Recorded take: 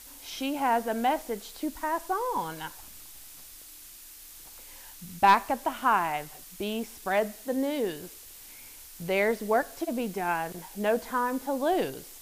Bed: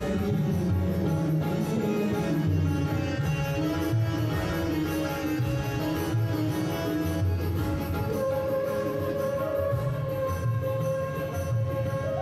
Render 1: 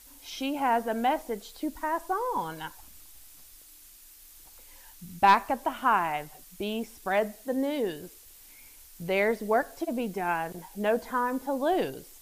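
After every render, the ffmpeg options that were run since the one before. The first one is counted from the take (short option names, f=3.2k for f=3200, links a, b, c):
-af "afftdn=nr=6:nf=-48"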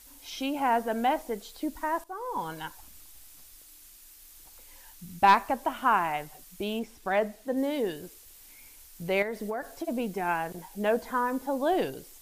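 -filter_complex "[0:a]asettb=1/sr,asplit=3[a][b][c];[a]atrim=end=6.794[d];[b]atrim=start=6.79:end=7.57,asetpts=PTS-STARTPTS,afade=t=in:d=0.004:c=qsin,afade=t=out:st=0.776:d=0.004:c=qsin,highshelf=f=5.9k:g=-7.5[e];[c]atrim=start=7.566[f];[d][e]acrossfade=d=0.004:c1=hsin:c2=qsin[g];[g][f]acrossfade=d=0.004:c1=qsin:c2=hsin,asettb=1/sr,asplit=3[h][i][j];[h]atrim=end=9.224[k];[i]atrim=start=9.22:end=9.85,asetpts=PTS-STARTPTS,afade=t=in:d=0.004:c=qsin,afade=t=out:st=0.626:d=0.004:c=qsin,acompressor=threshold=-28dB:ratio=12:attack=3.2:release=140:knee=1:detection=peak[l];[j]atrim=start=9.846[m];[k][l]acrossfade=d=0.004:c1=hsin:c2=qsin[n];[n][m]acrossfade=d=0.004:c1=qsin:c2=hsin,asplit=2[o][p];[o]atrim=end=2.04,asetpts=PTS-STARTPTS,afade=t=out:st=2.036:d=0.004:c=hsin:silence=0.149624[q];[p]atrim=start=2.04,asetpts=PTS-STARTPTS,afade=t=in:d=0.46:silence=0.149624[r];[q][r]concat=n=2:v=0:a=1"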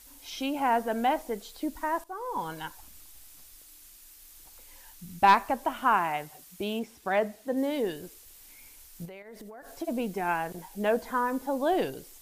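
-filter_complex "[0:a]asettb=1/sr,asplit=3[a][b][c];[a]atrim=end=5.974[d];[b]atrim=start=5.97:end=7.71,asetpts=PTS-STARTPTS,afade=t=in:d=0.004:c=qsin,afade=t=out:st=1.736:d=0.004:c=qsin,highpass=56[e];[c]atrim=start=7.706[f];[d][e]acrossfade=d=0.004:c1=hsin:c2=qsin[g];[g][f]acrossfade=d=0.004:c1=qsin:c2=hsin,asettb=1/sr,asplit=3[h][i][j];[h]atrim=end=9.054[k];[i]atrim=start=9.05:end=9.8,asetpts=PTS-STARTPTS,afade=t=in:d=0.004:c=qsin,afade=t=out:st=0.746:d=0.004:c=qsin,acompressor=threshold=-41dB:ratio=16:attack=3.2:release=140:knee=1:detection=peak[l];[j]atrim=start=9.796[m];[k][l]acrossfade=d=0.004:c1=hsin:c2=qsin[n];[n][m]acrossfade=d=0.004:c1=qsin:c2=hsin"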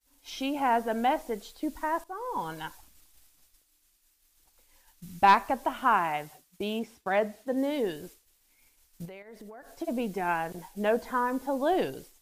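-af "highshelf=f=9.7k:g=-5,agate=range=-33dB:threshold=-44dB:ratio=3:detection=peak"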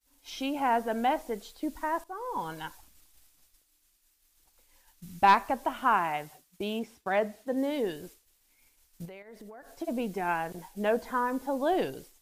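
-af "volume=-1dB"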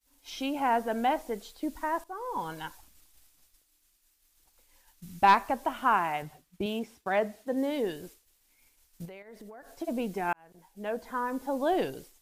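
-filter_complex "[0:a]asettb=1/sr,asplit=3[a][b][c];[a]atrim=end=6.224[d];[b]atrim=start=6.22:end=6.66,asetpts=PTS-STARTPTS,afade=t=in:d=0.004:c=qsin,afade=t=out:st=0.436:d=0.004:c=qsin,bass=f=250:g=8,treble=f=4k:g=-6[e];[c]atrim=start=6.656[f];[d][e]acrossfade=d=0.004:c1=hsin:c2=qsin[g];[g][f]acrossfade=d=0.004:c1=qsin:c2=hsin,asplit=2[h][i];[h]atrim=end=10.33,asetpts=PTS-STARTPTS,afade=t=out:st=10.326:d=0.004:c=hsin[j];[i]atrim=start=10.33,asetpts=PTS-STARTPTS,afade=t=in:d=1.24[k];[j][k]concat=n=2:v=0:a=1"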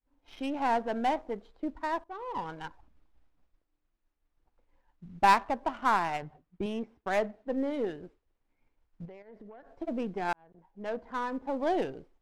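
-af "aeval=exprs='if(lt(val(0),0),0.708*val(0),val(0))':c=same,adynamicsmooth=sensitivity=7:basefreq=1.2k"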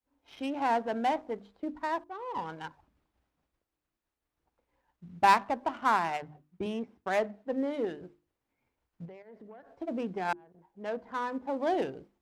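-af "highpass=68,bandreject=f=50:t=h:w=6,bandreject=f=100:t=h:w=6,bandreject=f=150:t=h:w=6,bandreject=f=200:t=h:w=6,bandreject=f=250:t=h:w=6,bandreject=f=300:t=h:w=6,bandreject=f=350:t=h:w=6"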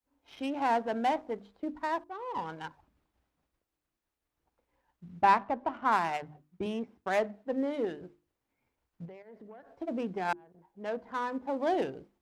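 -filter_complex "[0:a]asplit=3[a][b][c];[a]afade=t=out:st=5.21:d=0.02[d];[b]lowpass=f=1.7k:p=1,afade=t=in:st=5.21:d=0.02,afade=t=out:st=5.91:d=0.02[e];[c]afade=t=in:st=5.91:d=0.02[f];[d][e][f]amix=inputs=3:normalize=0"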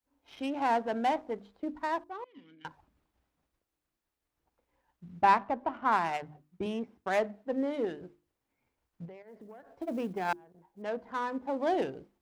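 -filter_complex "[0:a]asettb=1/sr,asplit=3[a][b][c];[a]atrim=end=2.244[d];[b]atrim=start=2.24:end=2.65,asetpts=PTS-STARTPTS,afade=t=in:d=0.004:c=qsin,afade=t=out:st=0.406:d=0.004:c=qsin,asplit=3[e][f][g];[e]bandpass=f=270:t=q:w=8,volume=0dB[h];[f]bandpass=f=2.29k:t=q:w=8,volume=-6dB[i];[g]bandpass=f=3.01k:t=q:w=8,volume=-9dB[j];[h][i][j]amix=inputs=3:normalize=0[k];[c]atrim=start=2.646[l];[d][k]acrossfade=d=0.004:c1=hsin:c2=qsin[m];[m][l]acrossfade=d=0.004:c1=qsin:c2=hsin,asettb=1/sr,asplit=3[n][o][p];[n]atrim=end=5.654[q];[o]atrim=start=5.65:end=6.06,asetpts=PTS-STARTPTS,afade=t=in:d=0.004:c=qsin,afade=t=out:st=0.406:d=0.004:c=qsin,highshelf=f=5.2k:g=-5.5[r];[p]atrim=start=6.056[s];[q][r]acrossfade=d=0.004:c1=hsin:c2=qsin[t];[t][s]acrossfade=d=0.004:c1=qsin:c2=hsin,asettb=1/sr,asplit=3[u][v][w];[u]atrim=end=9.274[x];[v]atrim=start=9.27:end=10.82,asetpts=PTS-STARTPTS,afade=t=in:d=0.004:c=qsin,afade=t=out:st=1.546:d=0.004:c=qsin,acrusher=bits=8:mode=log:mix=0:aa=0.000001[y];[w]atrim=start=10.816[z];[x][y]acrossfade=d=0.004:c1=hsin:c2=qsin[aa];[aa][z]acrossfade=d=0.004:c1=qsin:c2=hsin"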